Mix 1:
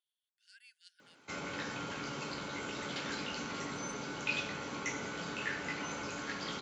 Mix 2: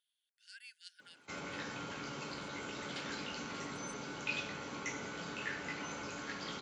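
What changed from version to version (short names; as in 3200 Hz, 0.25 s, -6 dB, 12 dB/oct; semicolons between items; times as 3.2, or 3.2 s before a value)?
speech +6.0 dB; background -3.0 dB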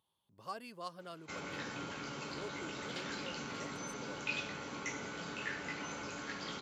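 speech: remove brick-wall FIR band-pass 1400–11000 Hz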